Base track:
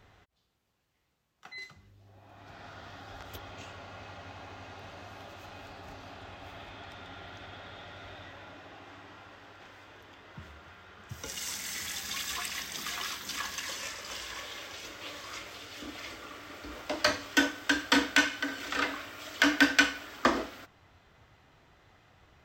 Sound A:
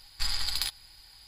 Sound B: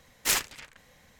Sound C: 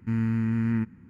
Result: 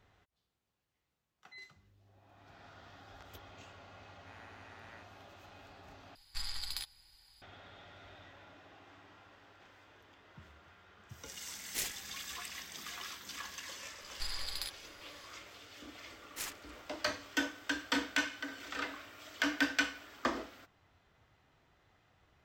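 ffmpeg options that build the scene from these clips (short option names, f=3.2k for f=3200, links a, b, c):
-filter_complex "[1:a]asplit=2[a][b];[2:a]asplit=2[c][d];[0:a]volume=-8.5dB[e];[3:a]highpass=f=590:w=0.5412,highpass=f=590:w=1.3066[f];[c]equalizer=f=1.2k:w=1.5:g=-11.5[g];[e]asplit=2[h][i];[h]atrim=end=6.154[j];[a]atrim=end=1.27,asetpts=PTS-STARTPTS,volume=-10dB[k];[i]atrim=start=7.416[l];[f]atrim=end=1.09,asetpts=PTS-STARTPTS,volume=-13dB,afade=t=in:d=0.004:c=hsin,afade=t=out:st=1.086:d=0.004:c=hsin,adelay=4190[m];[g]atrim=end=1.19,asetpts=PTS-STARTPTS,volume=-11.5dB,afade=t=in:d=0.004:c=hsin,afade=t=out:st=1.186:d=0.004:c=hsin,adelay=11490[n];[b]atrim=end=1.27,asetpts=PTS-STARTPTS,volume=-10dB,afade=t=in:d=0.004:c=hsin,afade=t=out:st=1.266:d=0.004:c=hsin,adelay=14000[o];[d]atrim=end=1.19,asetpts=PTS-STARTPTS,volume=-16.5dB,afade=t=in:d=0.004:c=hsin,afade=t=out:st=1.186:d=0.004:c=hsin,adelay=16110[p];[j][k]acrossfade=d=0.004:c1=hsin:c2=hsin[q];[q][l]acrossfade=d=0.004:c1=hsin:c2=hsin[r];[r][m][n][o][p]amix=inputs=5:normalize=0"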